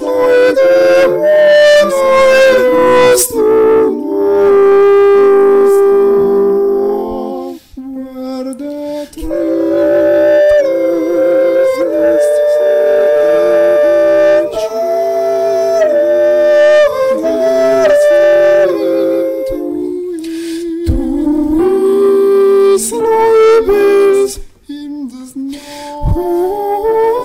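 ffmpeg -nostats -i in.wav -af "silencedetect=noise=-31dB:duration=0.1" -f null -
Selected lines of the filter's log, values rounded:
silence_start: 7.58
silence_end: 7.73 | silence_duration: 0.15
silence_start: 24.47
silence_end: 24.69 | silence_duration: 0.22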